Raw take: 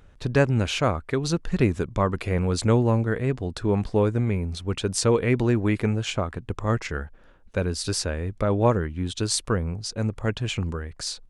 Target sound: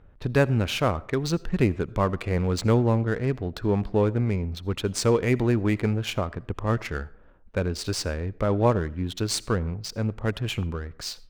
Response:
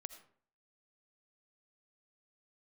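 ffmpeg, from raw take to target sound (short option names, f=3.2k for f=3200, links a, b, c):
-filter_complex "[0:a]adynamicsmooth=sensitivity=7.5:basefreq=1.9k,asplit=2[a][b];[1:a]atrim=start_sample=2205[c];[b][c]afir=irnorm=-1:irlink=0,volume=-3.5dB[d];[a][d]amix=inputs=2:normalize=0,volume=-3.5dB"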